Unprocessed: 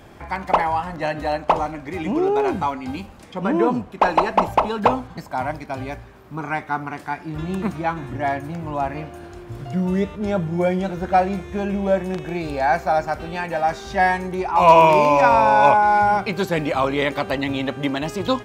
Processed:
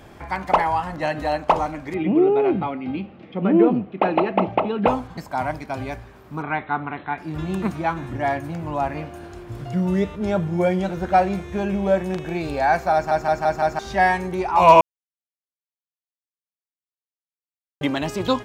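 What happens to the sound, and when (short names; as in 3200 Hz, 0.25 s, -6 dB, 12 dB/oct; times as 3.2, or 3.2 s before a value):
1.94–4.88 speaker cabinet 130–3100 Hz, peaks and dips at 130 Hz +5 dB, 190 Hz +5 dB, 340 Hz +6 dB, 980 Hz -10 dB, 1600 Hz -7 dB
6.42–7.18 brick-wall FIR low-pass 4200 Hz
12.94 stutter in place 0.17 s, 5 plays
14.81–17.81 mute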